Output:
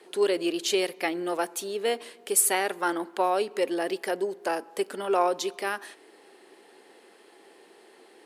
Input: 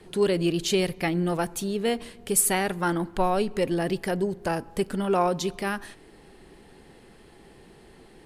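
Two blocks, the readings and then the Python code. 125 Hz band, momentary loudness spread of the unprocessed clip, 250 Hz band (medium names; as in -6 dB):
under -20 dB, 7 LU, -6.0 dB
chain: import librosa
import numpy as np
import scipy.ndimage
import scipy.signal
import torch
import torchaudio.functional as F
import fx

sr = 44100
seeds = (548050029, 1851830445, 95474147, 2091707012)

y = scipy.signal.sosfilt(scipy.signal.butter(4, 330.0, 'highpass', fs=sr, output='sos'), x)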